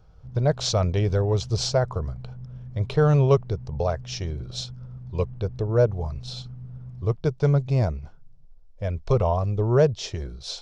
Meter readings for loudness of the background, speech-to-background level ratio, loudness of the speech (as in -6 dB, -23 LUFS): -40.5 LUFS, 16.0 dB, -24.5 LUFS